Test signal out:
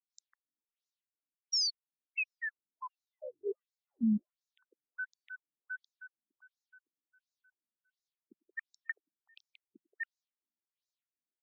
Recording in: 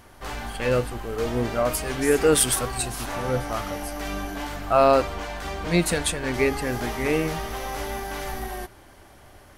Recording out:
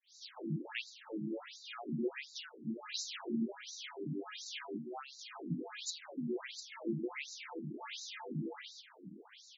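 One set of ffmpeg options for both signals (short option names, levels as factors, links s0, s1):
-filter_complex "[0:a]afreqshift=100,acompressor=threshold=0.0224:ratio=12,firequalizer=gain_entry='entry(330,0);entry(580,-15);entry(3300,0)':delay=0.05:min_phase=1,acrossover=split=520|4500[s0][s1][s2];[s0]adelay=50[s3];[s1]adelay=150[s4];[s3][s4][s2]amix=inputs=3:normalize=0,afftfilt=real='re*between(b*sr/1024,230*pow(5300/230,0.5+0.5*sin(2*PI*1.4*pts/sr))/1.41,230*pow(5300/230,0.5+0.5*sin(2*PI*1.4*pts/sr))*1.41)':imag='im*between(b*sr/1024,230*pow(5300/230,0.5+0.5*sin(2*PI*1.4*pts/sr))/1.41,230*pow(5300/230,0.5+0.5*sin(2*PI*1.4*pts/sr))*1.41)':win_size=1024:overlap=0.75,volume=2.82"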